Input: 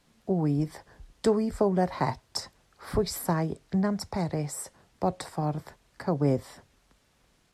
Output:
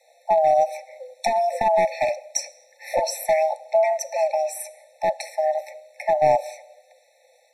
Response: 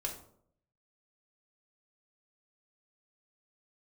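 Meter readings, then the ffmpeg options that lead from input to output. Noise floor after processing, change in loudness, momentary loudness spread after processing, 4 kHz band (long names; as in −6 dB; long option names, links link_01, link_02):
−60 dBFS, +7.0 dB, 17 LU, +3.5 dB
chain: -filter_complex "[0:a]afreqshift=470,asplit=2[link_01][link_02];[1:a]atrim=start_sample=2205,asetrate=23814,aresample=44100,lowshelf=frequency=210:gain=8[link_03];[link_02][link_03]afir=irnorm=-1:irlink=0,volume=-16.5dB[link_04];[link_01][link_04]amix=inputs=2:normalize=0,aeval=exprs='clip(val(0),-1,0.119)':channel_layout=same,afftfilt=real='re*eq(mod(floor(b*sr/1024/880),2),0)':imag='im*eq(mod(floor(b*sr/1024/880),2),0)':win_size=1024:overlap=0.75,volume=7dB"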